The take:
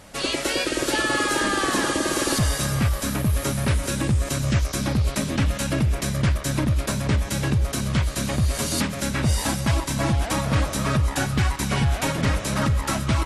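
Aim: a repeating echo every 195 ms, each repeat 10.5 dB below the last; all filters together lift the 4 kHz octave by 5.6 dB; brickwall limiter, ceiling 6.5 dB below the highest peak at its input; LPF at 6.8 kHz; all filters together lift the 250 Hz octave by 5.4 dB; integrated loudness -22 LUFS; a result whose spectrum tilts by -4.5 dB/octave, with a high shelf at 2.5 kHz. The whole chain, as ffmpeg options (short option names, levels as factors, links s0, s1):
-af "lowpass=6800,equalizer=f=250:t=o:g=7,highshelf=f=2500:g=3.5,equalizer=f=4000:t=o:g=4.5,alimiter=limit=0.224:level=0:latency=1,aecho=1:1:195|390|585:0.299|0.0896|0.0269"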